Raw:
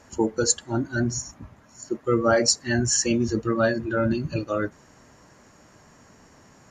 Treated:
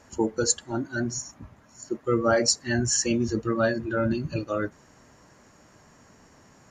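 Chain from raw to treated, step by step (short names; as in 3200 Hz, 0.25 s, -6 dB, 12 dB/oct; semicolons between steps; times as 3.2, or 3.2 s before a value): 0.71–1.36 HPF 170 Hz 6 dB/oct; gain -2 dB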